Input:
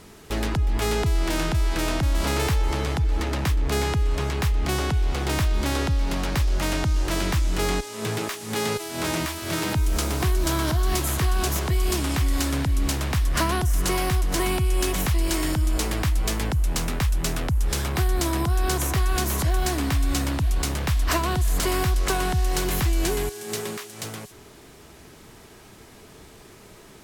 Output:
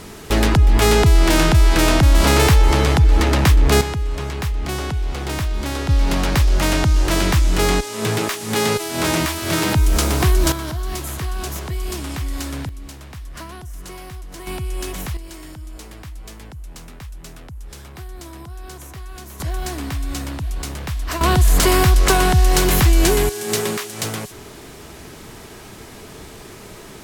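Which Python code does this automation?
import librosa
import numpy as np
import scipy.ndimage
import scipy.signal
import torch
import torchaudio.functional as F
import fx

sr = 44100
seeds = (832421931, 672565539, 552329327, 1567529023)

y = fx.gain(x, sr, db=fx.steps((0.0, 10.0), (3.81, 0.0), (5.89, 7.0), (10.52, -3.0), (12.69, -12.0), (14.47, -4.0), (15.17, -12.5), (19.4, -2.5), (21.21, 9.0)))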